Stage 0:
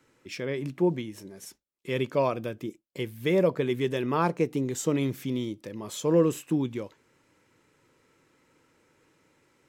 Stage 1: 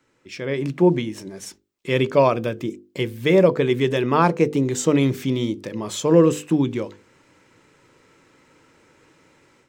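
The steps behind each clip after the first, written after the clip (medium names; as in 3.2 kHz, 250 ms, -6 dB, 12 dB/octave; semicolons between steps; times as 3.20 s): peaking EQ 12 kHz -13.5 dB 0.37 oct; hum notches 50/100/150/200/250/300/350/400/450/500 Hz; level rider gain up to 10 dB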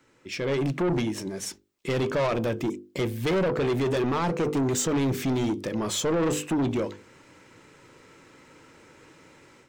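peak limiter -11.5 dBFS, peak gain reduction 8.5 dB; saturation -24.5 dBFS, distortion -8 dB; trim +3 dB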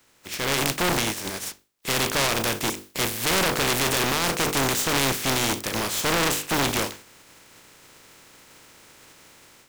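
spectral contrast reduction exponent 0.35; trim +2 dB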